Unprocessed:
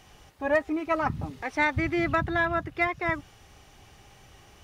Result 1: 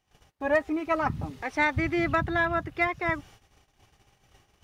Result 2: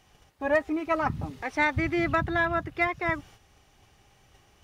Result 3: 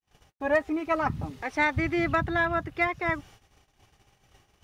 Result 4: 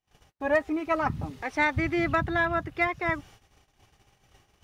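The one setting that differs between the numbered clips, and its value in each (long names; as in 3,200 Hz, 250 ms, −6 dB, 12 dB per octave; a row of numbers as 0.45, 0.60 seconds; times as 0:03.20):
noise gate, range: −22, −7, −54, −35 decibels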